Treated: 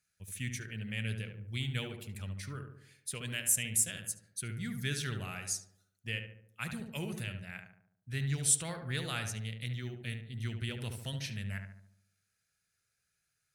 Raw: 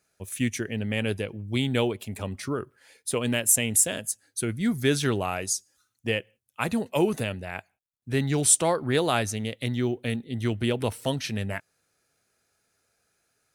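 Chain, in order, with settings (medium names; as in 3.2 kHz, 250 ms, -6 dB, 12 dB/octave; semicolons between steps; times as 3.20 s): high-order bell 510 Hz -13 dB 2.5 oct; filtered feedback delay 72 ms, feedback 54%, low-pass 1.5 kHz, level -5 dB; trim -8 dB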